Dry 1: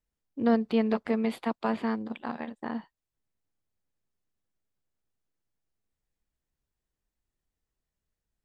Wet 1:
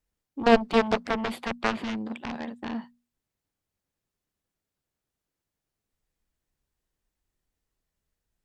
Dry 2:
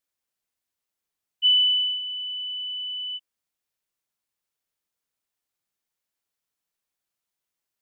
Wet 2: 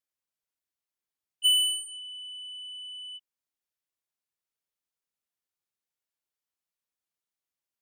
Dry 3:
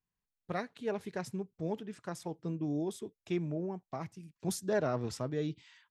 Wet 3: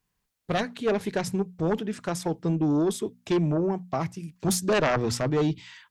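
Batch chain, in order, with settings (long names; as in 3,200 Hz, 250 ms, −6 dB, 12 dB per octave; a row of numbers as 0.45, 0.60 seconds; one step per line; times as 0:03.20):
mains-hum notches 60/120/180/240 Hz
harmonic generator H 3 −10 dB, 7 −22 dB, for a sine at −13 dBFS
loudness normalisation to −27 LKFS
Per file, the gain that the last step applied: +10.0, −1.0, +19.0 decibels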